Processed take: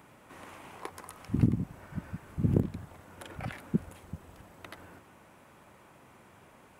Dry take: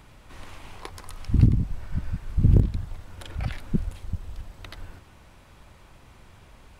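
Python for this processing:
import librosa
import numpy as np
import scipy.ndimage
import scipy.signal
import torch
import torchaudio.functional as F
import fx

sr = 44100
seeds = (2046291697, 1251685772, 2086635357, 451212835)

y = scipy.signal.sosfilt(scipy.signal.butter(2, 180.0, 'highpass', fs=sr, output='sos'), x)
y = fx.peak_eq(y, sr, hz=4300.0, db=-10.0, octaves=1.3)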